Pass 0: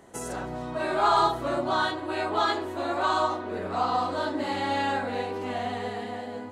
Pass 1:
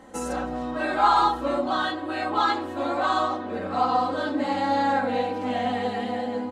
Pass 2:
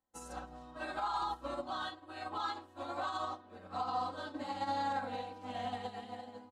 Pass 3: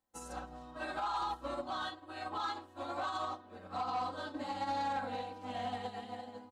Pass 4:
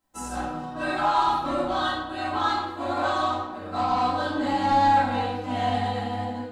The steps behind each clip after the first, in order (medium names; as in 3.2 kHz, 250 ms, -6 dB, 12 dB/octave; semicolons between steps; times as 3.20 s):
treble shelf 6.6 kHz -9 dB; comb 3.8 ms, depth 91%; gain riding within 4 dB 2 s
ten-band graphic EQ 250 Hz -8 dB, 500 Hz -7 dB, 2 kHz -7 dB; peak limiter -23 dBFS, peak gain reduction 11 dB; upward expansion 2.5:1, over -51 dBFS; trim -3 dB
saturation -30 dBFS, distortion -19 dB; trim +1.5 dB
reverberation RT60 0.90 s, pre-delay 3 ms, DRR -8 dB; trim +4.5 dB